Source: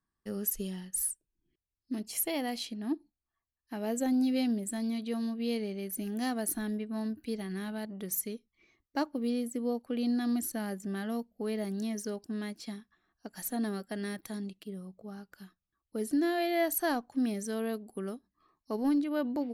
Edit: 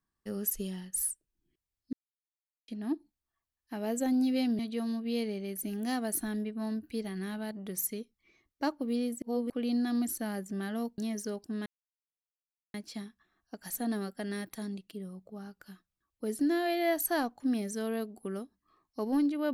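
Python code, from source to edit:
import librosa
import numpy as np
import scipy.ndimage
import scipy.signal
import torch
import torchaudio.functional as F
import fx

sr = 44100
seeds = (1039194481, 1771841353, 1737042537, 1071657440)

y = fx.edit(x, sr, fx.silence(start_s=1.93, length_s=0.75),
    fx.cut(start_s=4.59, length_s=0.34),
    fx.reverse_span(start_s=9.56, length_s=0.28),
    fx.cut(start_s=11.32, length_s=0.46),
    fx.insert_silence(at_s=12.46, length_s=1.08), tone=tone)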